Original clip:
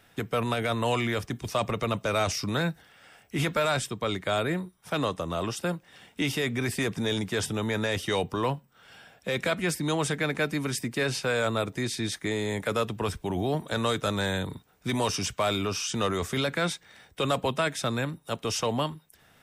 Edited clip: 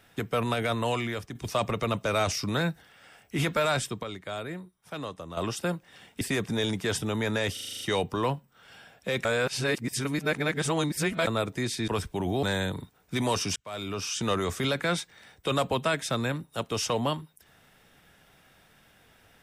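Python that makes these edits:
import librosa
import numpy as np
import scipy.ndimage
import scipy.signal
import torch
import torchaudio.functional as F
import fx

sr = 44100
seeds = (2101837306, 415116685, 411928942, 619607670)

y = fx.edit(x, sr, fx.fade_out_to(start_s=0.68, length_s=0.67, floor_db=-7.5),
    fx.clip_gain(start_s=4.03, length_s=1.34, db=-8.5),
    fx.cut(start_s=6.21, length_s=0.48),
    fx.stutter(start_s=8.01, slice_s=0.04, count=8),
    fx.reverse_span(start_s=9.45, length_s=2.02),
    fx.cut(start_s=12.08, length_s=0.9),
    fx.cut(start_s=13.53, length_s=0.63),
    fx.fade_in_span(start_s=15.29, length_s=0.61), tone=tone)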